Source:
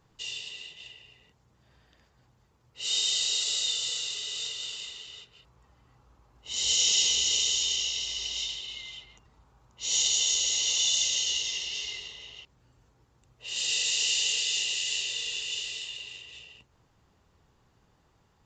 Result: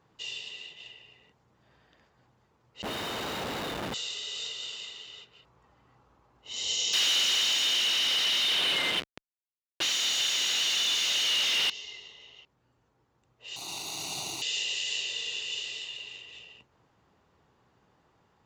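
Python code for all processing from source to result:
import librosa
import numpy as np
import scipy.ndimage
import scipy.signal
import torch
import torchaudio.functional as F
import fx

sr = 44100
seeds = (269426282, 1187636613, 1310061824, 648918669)

y = fx.chain(x, sr, fx.high_shelf(hz=2500.0, db=-7.5),
    fx.schmitt(flips_db=-32.5), at=(2.82, 3.94))
y = fx.chain(y, sr, fx.schmitt(flips_db=-42.0),
    fx.weighting(curve='D'), at=(6.93, 11.7))
y = fx.chain(y, sr, fx.lower_of_two(delay_ms=0.47),
    fx.highpass(hz=52.0, slope=12),
    fx.fixed_phaser(hz=340.0, stages=8), at=(13.56, 14.42))
y = fx.highpass(y, sr, hz=210.0, slope=6)
y = fx.high_shelf(y, sr, hz=4400.0, db=-11.5)
y = fx.rider(y, sr, range_db=3, speed_s=2.0)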